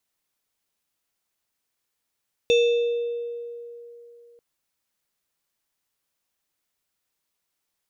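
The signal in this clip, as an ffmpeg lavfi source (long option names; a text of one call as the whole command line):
ffmpeg -f lavfi -i "aevalsrc='0.2*pow(10,-3*t/3.09)*sin(2*PI*473*t+0.64*pow(10,-3*t/1.86)*sin(2*PI*6.57*473*t))':duration=1.89:sample_rate=44100" out.wav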